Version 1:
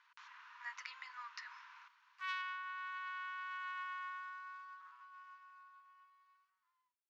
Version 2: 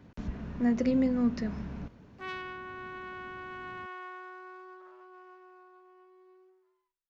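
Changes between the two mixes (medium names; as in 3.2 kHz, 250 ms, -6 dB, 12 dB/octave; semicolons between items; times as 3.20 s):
speech: remove distance through air 90 m; master: remove Chebyshev high-pass 970 Hz, order 6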